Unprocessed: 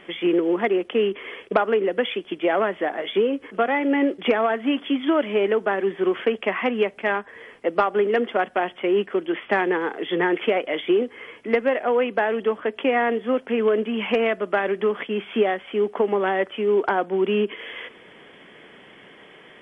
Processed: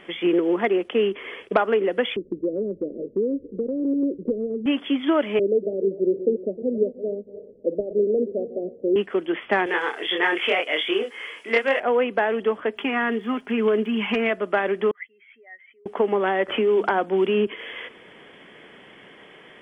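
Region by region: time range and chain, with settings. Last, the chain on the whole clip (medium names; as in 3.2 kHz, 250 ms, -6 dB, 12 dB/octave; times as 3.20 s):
2.16–4.66 s: steep low-pass 550 Hz 96 dB/octave + tilt EQ -2.5 dB/octave + compression 2:1, threshold -24 dBFS
5.39–8.96 s: backward echo that repeats 154 ms, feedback 47%, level -12.5 dB + steep low-pass 580 Hz 72 dB/octave
9.66–11.80 s: high-pass 750 Hz 6 dB/octave + treble shelf 2.8 kHz +11 dB + doubling 26 ms -2 dB
12.76–14.29 s: peaking EQ 540 Hz -13 dB 0.36 oct + comb 4.9 ms, depth 45% + crackle 100 per s -50 dBFS
14.91–15.86 s: spectral contrast enhancement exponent 2 + band-pass filter 2 kHz, Q 12
16.48–17.47 s: de-hum 50.88 Hz, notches 6 + three bands compressed up and down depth 70%
whole clip: none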